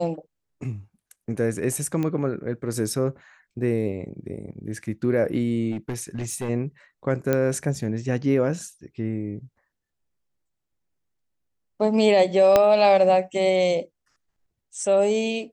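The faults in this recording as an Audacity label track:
2.030000	2.030000	click −16 dBFS
5.710000	6.500000	clipping −24.5 dBFS
7.330000	7.330000	click −9 dBFS
12.560000	12.560000	click −4 dBFS

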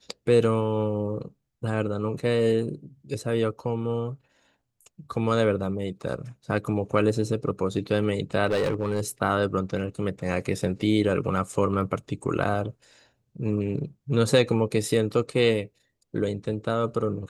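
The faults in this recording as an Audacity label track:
8.460000	9.000000	clipping −20 dBFS

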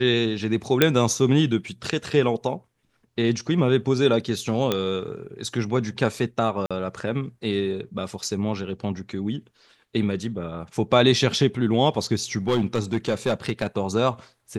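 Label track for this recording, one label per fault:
0.820000	0.820000	click −2 dBFS
4.720000	4.720000	click −8 dBFS
6.660000	6.710000	drop-out 46 ms
12.370000	13.670000	clipping −16 dBFS

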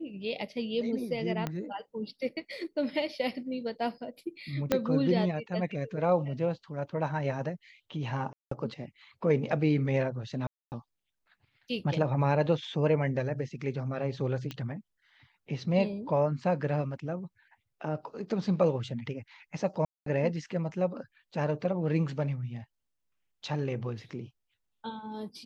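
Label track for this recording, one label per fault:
1.470000	1.470000	click −18 dBFS
4.720000	4.720000	click −11 dBFS
8.330000	8.510000	drop-out 184 ms
10.470000	10.720000	drop-out 249 ms
14.510000	14.510000	click −23 dBFS
19.850000	20.060000	drop-out 213 ms

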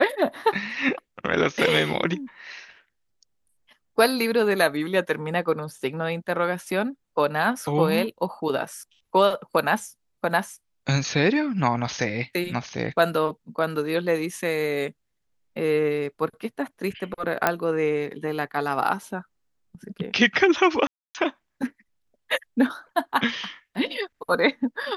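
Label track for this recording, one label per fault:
17.470000	17.470000	click −5 dBFS
20.870000	21.150000	drop-out 278 ms

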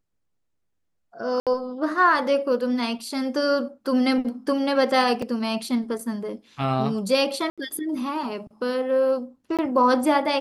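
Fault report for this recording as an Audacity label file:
1.400000	1.470000	drop-out 67 ms
5.220000	5.220000	drop-out 4.5 ms
7.500000	7.580000	drop-out 76 ms
9.570000	9.590000	drop-out 17 ms

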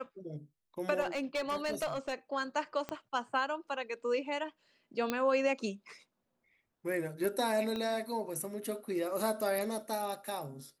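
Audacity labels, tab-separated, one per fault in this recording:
1.000000	2.140000	clipping −30 dBFS
2.890000	2.890000	click −23 dBFS
5.100000	5.100000	click −17 dBFS
7.760000	7.760000	click −25 dBFS

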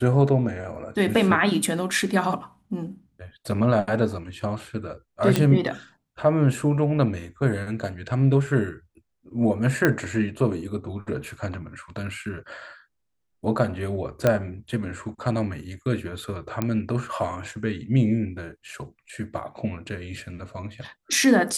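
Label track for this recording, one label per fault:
5.360000	5.360000	click −7 dBFS
9.850000	9.850000	click −6 dBFS
14.270000	14.270000	click −7 dBFS
16.620000	16.620000	click −11 dBFS

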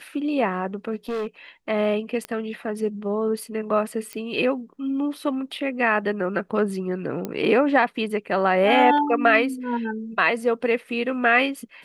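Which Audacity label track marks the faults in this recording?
1.090000	1.270000	clipping −24.5 dBFS
2.250000	2.250000	click −16 dBFS
4.130000	4.130000	click −17 dBFS
7.250000	7.250000	click −15 dBFS

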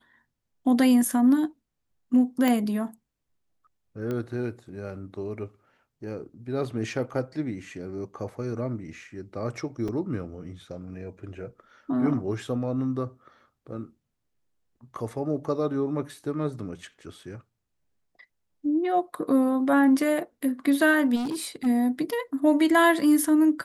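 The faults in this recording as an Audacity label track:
2.480000	2.480000	click
4.110000	4.110000	click −20 dBFS
9.880000	9.880000	drop-out 4.4 ms
21.150000	21.670000	clipping −26.5 dBFS

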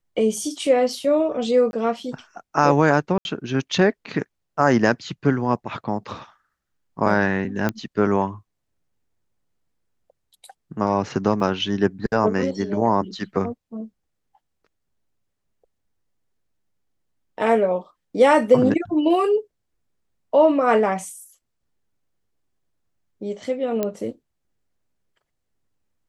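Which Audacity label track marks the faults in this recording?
1.710000	1.730000	drop-out 21 ms
3.180000	3.250000	drop-out 71 ms
7.690000	7.690000	click −10 dBFS
11.400000	11.400000	drop-out 2 ms
23.830000	23.830000	click −10 dBFS

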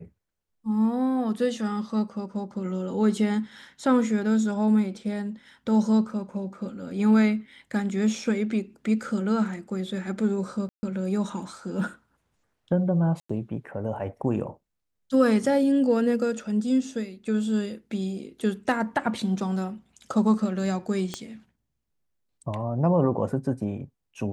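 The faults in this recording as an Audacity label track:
10.690000	10.830000	drop-out 140 ms
13.200000	13.290000	drop-out 95 ms
21.140000	21.140000	click −16 dBFS

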